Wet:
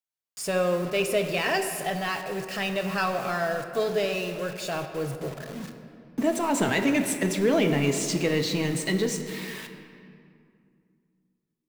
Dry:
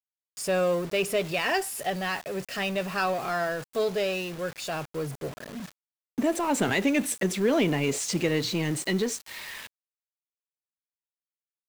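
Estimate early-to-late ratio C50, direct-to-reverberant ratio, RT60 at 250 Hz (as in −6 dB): 7.5 dB, 6.0 dB, 3.1 s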